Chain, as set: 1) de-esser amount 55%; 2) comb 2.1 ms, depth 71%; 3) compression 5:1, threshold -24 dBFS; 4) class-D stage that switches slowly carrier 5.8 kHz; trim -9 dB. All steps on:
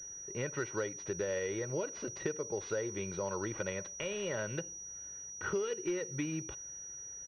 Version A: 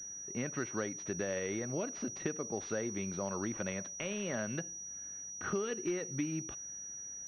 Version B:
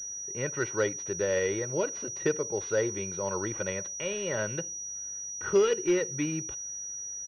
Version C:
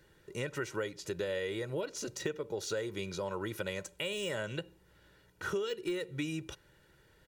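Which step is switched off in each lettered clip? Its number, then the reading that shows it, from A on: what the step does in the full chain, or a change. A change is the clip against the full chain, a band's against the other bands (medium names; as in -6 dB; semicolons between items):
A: 2, 250 Hz band +4.0 dB; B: 3, momentary loudness spread change +1 LU; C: 4, 4 kHz band +7.0 dB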